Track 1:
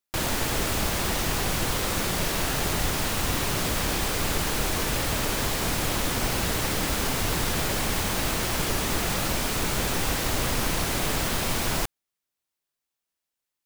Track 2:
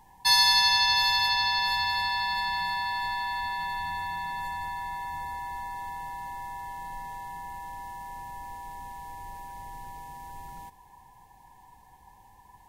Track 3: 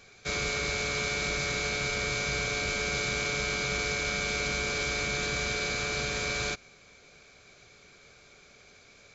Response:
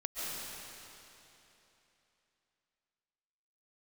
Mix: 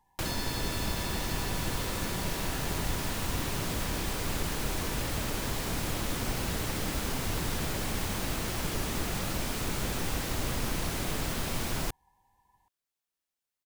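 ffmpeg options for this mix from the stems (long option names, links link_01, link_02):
-filter_complex "[0:a]adelay=50,volume=-4dB[link_01];[1:a]volume=-14.5dB[link_02];[link_01][link_02]amix=inputs=2:normalize=0,acrossover=split=360[link_03][link_04];[link_04]acompressor=threshold=-33dB:ratio=6[link_05];[link_03][link_05]amix=inputs=2:normalize=0"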